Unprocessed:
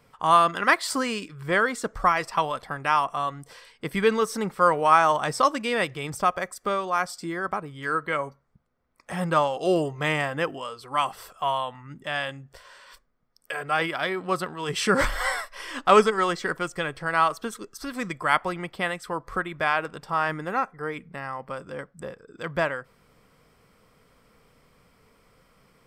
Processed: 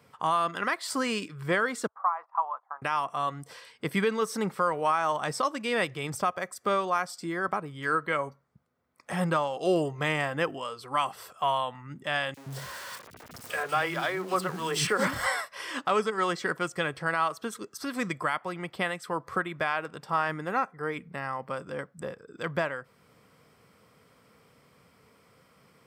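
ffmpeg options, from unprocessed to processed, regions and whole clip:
-filter_complex "[0:a]asettb=1/sr,asplit=3[s0][s1][s2];[s0]atrim=end=1.874[s3];[s1]atrim=start=1.87:end=2.82,asetpts=PTS-STARTPTS,afade=t=in:d=0.004:c=qsin,afade=t=out:st=0.946:d=0.004:c=qsin,agate=range=0.178:threshold=0.0126:ratio=16:release=100:detection=peak,asuperpass=centerf=970:order=4:qfactor=2.1[s4];[s2]atrim=start=2.816[s5];[s3][s4]acrossfade=d=0.004:c1=hsin:c2=qsin[s6];[s6][s5]acrossfade=d=0.004:c1=qsin:c2=hsin,asettb=1/sr,asplit=3[s7][s8][s9];[s7]atrim=end=12.344[s10];[s8]atrim=start=12.34:end=15.26,asetpts=PTS-STARTPTS,afade=t=in:d=0.004:c=qsin,afade=t=out:st=2.916:d=0.004:c=qsin,aeval=exprs='val(0)+0.5*0.015*sgn(val(0))':c=same,acrossover=split=290|2900[s11][s12][s13];[s12]adelay=30[s14];[s11]adelay=120[s15];[s15][s14][s13]amix=inputs=3:normalize=0,atrim=end_sample=128772[s16];[s9]atrim=start=15.256[s17];[s10][s16]acrossfade=d=0.004:c1=hsin:c2=qsin[s18];[s18][s17]acrossfade=d=0.004:c1=qsin:c2=hsin,highpass=f=79:w=0.5412,highpass=f=79:w=1.3066,alimiter=limit=0.168:level=0:latency=1:release=480"

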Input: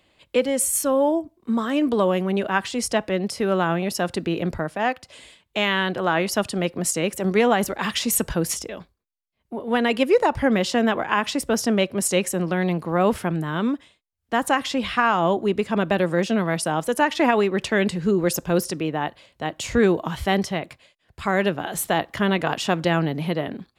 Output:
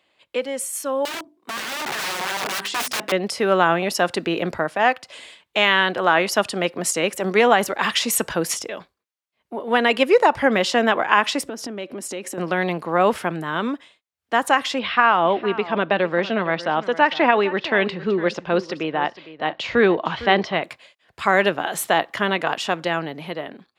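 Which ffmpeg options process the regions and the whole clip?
-filter_complex "[0:a]asettb=1/sr,asplit=3[s0][s1][s2];[s0]atrim=end=1.054[s3];[s1]atrim=start=1.05:end=3.12,asetpts=PTS-STARTPTS,afade=t=in:d=0.004:c=qsin,afade=t=out:st=2.066:d=0.004:c=qsin,highpass=130,bandreject=f=50:t=h:w=6,bandreject=f=100:t=h:w=6,bandreject=f=150:t=h:w=6,bandreject=f=200:t=h:w=6,bandreject=f=250:t=h:w=6,bandreject=f=300:t=h:w=6,bandreject=f=350:t=h:w=6,bandreject=f=400:t=h:w=6,aeval=exprs='(mod(14.1*val(0)+1,2)-1)/14.1':c=same[s4];[s2]atrim=start=3.116[s5];[s3][s4]acrossfade=d=0.004:c1=hsin:c2=qsin[s6];[s6][s5]acrossfade=d=0.004:c1=qsin:c2=hsin,asettb=1/sr,asplit=3[s7][s8][s9];[s7]atrim=end=11.444[s10];[s8]atrim=start=11.44:end=12.38,asetpts=PTS-STARTPTS,afade=t=in:d=0.004:c=qsin,afade=t=out:st=0.936:d=0.004:c=qsin,equalizer=f=290:t=o:w=0.82:g=12.5,acompressor=threshold=0.0355:ratio=6:attack=3.2:release=140:knee=1:detection=peak[s11];[s9]atrim=start=12.376[s12];[s10][s11]acrossfade=d=0.004:c1=hsin:c2=qsin[s13];[s13][s12]acrossfade=d=0.004:c1=qsin:c2=hsin,asettb=1/sr,asplit=3[s14][s15][s16];[s14]atrim=end=14.794[s17];[s15]atrim=start=14.79:end=20.62,asetpts=PTS-STARTPTS,afade=t=in:d=0.004:c=qsin,afade=t=out:st=5.826:d=0.004:c=qsin,lowpass=f=4400:w=0.5412,lowpass=f=4400:w=1.3066,aecho=1:1:457:0.158,atrim=end_sample=257103[s18];[s16]atrim=start=20.616[s19];[s17][s18]acrossfade=d=0.004:c1=hsin:c2=qsin[s20];[s20][s19]acrossfade=d=0.004:c1=qsin:c2=hsin,highpass=f=640:p=1,highshelf=f=5600:g=-8.5,dynaudnorm=f=400:g=11:m=3.76"

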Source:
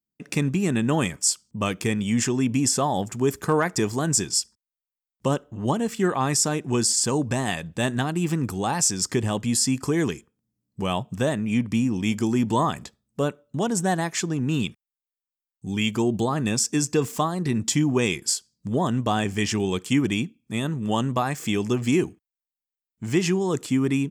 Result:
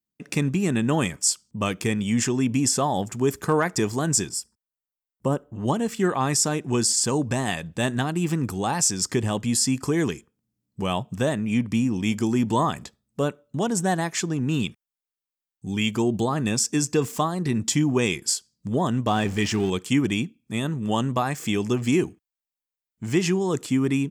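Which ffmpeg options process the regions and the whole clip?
-filter_complex "[0:a]asettb=1/sr,asplit=3[s0][s1][s2];[s0]atrim=end=4.294[s3];[s1]atrim=start=4.29:end=5.55,asetpts=PTS-STARTPTS,afade=t=in:d=0.004:c=qsin,afade=t=out:st=1.256:d=0.004:c=qsin,equalizer=f=3800:t=o:w=1.9:g=-12,bandreject=f=6500:w=13[s4];[s2]atrim=start=5.546[s5];[s3][s4]acrossfade=d=0.004:c1=hsin:c2=qsin[s6];[s6][s5]acrossfade=d=0.004:c1=qsin:c2=hsin,asettb=1/sr,asplit=3[s7][s8][s9];[s7]atrim=end=19.074[s10];[s8]atrim=start=19.07:end=19.7,asetpts=PTS-STARTPTS,afade=t=in:d=0.004:c=qsin,afade=t=out:st=0.626:d=0.004:c=qsin,aeval=exprs='val(0)+0.5*0.0211*sgn(val(0))':c=same,highshelf=f=8200:g=-9[s11];[s9]atrim=start=19.696[s12];[s10][s11]acrossfade=d=0.004:c1=hsin:c2=qsin[s13];[s13][s12]acrossfade=d=0.004:c1=qsin:c2=hsin"

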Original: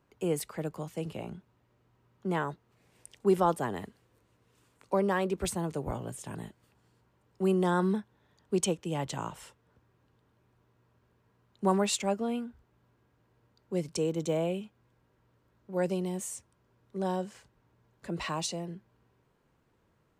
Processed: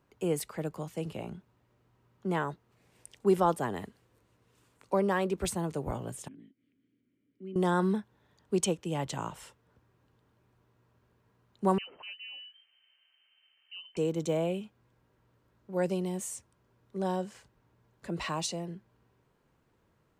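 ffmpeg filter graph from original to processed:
-filter_complex "[0:a]asettb=1/sr,asplit=3[s0][s1][s2];[s0]atrim=end=6.284[s3];[s1]atrim=start=6.28:end=7.56,asetpts=PTS-STARTPTS,afade=t=in:d=0.004:c=qsin,afade=t=out:st=1.276:d=0.004:c=qsin,highshelf=f=2100:g=-11.5,acompressor=mode=upward:threshold=0.00316:ratio=2.5:attack=3.2:release=140:knee=2.83:detection=peak,asplit=3[s4][s5][s6];[s4]bandpass=f=270:t=q:w=8,volume=1[s7];[s5]bandpass=f=2290:t=q:w=8,volume=0.501[s8];[s6]bandpass=f=3010:t=q:w=8,volume=0.355[s9];[s7][s8][s9]amix=inputs=3:normalize=0[s10];[s2]atrim=start=7.556[s11];[s3][s10]acrossfade=d=0.004:c1=hsin:c2=qsin[s12];[s12][s11]acrossfade=d=0.004:c1=qsin:c2=hsin,asettb=1/sr,asplit=3[s13][s14][s15];[s13]atrim=end=11.784[s16];[s14]atrim=start=11.78:end=13.97,asetpts=PTS-STARTPTS,afade=t=in:d=0.004:c=qsin,afade=t=out:st=2.186:d=0.004:c=qsin,lowpass=f=2700:t=q:w=0.5098,lowpass=f=2700:t=q:w=0.6013,lowpass=f=2700:t=q:w=0.9,lowpass=f=2700:t=q:w=2.563,afreqshift=-3200,highpass=f=110:p=1,acompressor=threshold=0.002:ratio=2:attack=3.2:release=140:knee=1:detection=peak[s17];[s15]atrim=start=13.966[s18];[s16][s17]acrossfade=d=0.004:c1=hsin:c2=qsin[s19];[s19][s18]acrossfade=d=0.004:c1=qsin:c2=hsin"

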